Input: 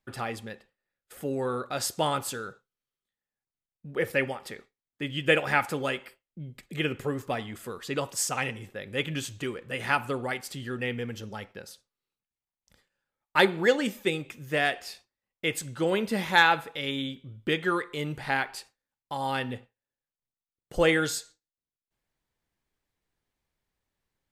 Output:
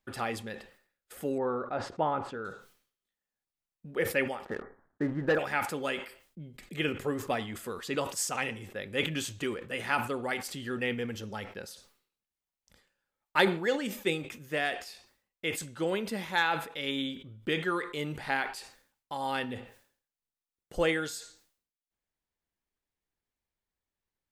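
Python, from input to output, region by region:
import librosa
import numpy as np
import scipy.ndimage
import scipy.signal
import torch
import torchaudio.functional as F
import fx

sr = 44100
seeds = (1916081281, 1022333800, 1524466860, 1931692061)

y = fx.chain(x, sr, fx.lowpass(hz=1400.0, slope=12),
    fx.dynamic_eq(hz=840.0, q=3.2, threshold_db=-40.0, ratio=4.0, max_db=4), at=(1.38, 2.45))
y = fx.chain(y, sr, fx.ellip_lowpass(hz=1700.0, order=4, stop_db=40),
    fx.leveller(passes=2), at=(4.45, 5.39))
y = fx.rider(y, sr, range_db=4, speed_s=0.5)
y = fx.peak_eq(y, sr, hz=130.0, db=-8.0, octaves=0.3)
y = fx.sustainer(y, sr, db_per_s=110.0)
y = F.gain(torch.from_numpy(y), -4.0).numpy()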